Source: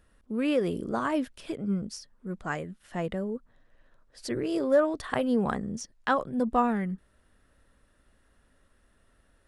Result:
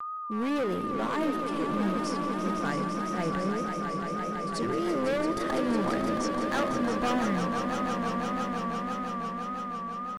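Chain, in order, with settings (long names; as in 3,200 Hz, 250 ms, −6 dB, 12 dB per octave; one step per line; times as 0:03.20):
noise gate −52 dBFS, range −60 dB
tempo change 0.93×
steady tone 1,200 Hz −33 dBFS
gain into a clipping stage and back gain 26 dB
echo that builds up and dies away 168 ms, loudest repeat 5, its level −9 dB
pitch vibrato 1.7 Hz 72 cents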